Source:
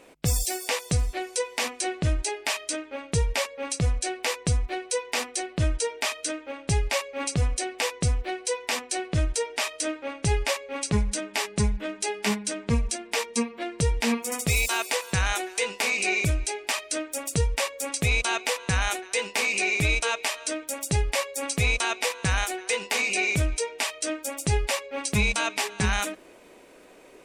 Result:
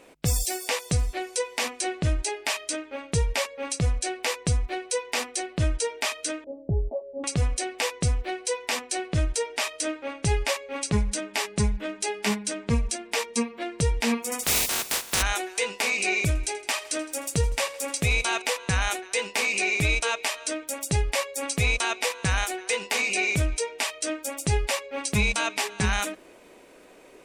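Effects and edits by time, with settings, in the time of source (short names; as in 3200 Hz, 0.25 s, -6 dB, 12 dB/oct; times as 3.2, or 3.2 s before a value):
6.44–7.24 elliptic low-pass 660 Hz, stop band 60 dB
14.42–15.21 spectral contrast lowered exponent 0.2
16.27–18.42 thinning echo 81 ms, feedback 65%, high-pass 220 Hz, level -18 dB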